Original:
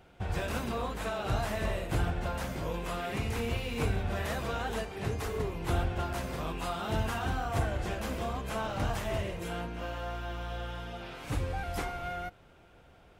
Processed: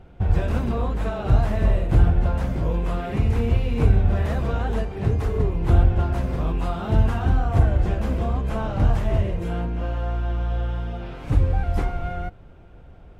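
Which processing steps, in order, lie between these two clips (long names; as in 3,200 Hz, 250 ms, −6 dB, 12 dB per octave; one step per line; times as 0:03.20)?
spectral tilt −3 dB per octave
level +3.5 dB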